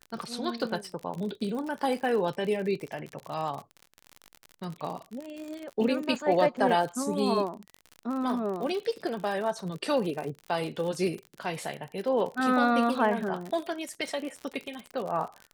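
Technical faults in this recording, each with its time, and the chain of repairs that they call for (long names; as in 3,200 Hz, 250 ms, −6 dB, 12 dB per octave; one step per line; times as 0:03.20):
surface crackle 53 per second −33 dBFS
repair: click removal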